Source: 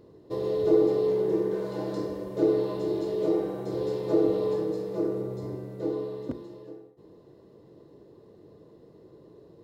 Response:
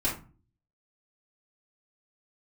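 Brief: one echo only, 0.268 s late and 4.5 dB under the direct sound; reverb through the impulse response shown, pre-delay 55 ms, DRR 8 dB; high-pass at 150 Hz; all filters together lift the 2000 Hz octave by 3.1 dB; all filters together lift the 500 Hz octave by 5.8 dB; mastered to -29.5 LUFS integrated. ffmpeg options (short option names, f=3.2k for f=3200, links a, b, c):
-filter_complex "[0:a]highpass=150,equalizer=f=500:t=o:g=7,equalizer=f=2k:t=o:g=3.5,aecho=1:1:268:0.596,asplit=2[a][b];[1:a]atrim=start_sample=2205,adelay=55[c];[b][c]afir=irnorm=-1:irlink=0,volume=-16dB[d];[a][d]amix=inputs=2:normalize=0,volume=-7.5dB"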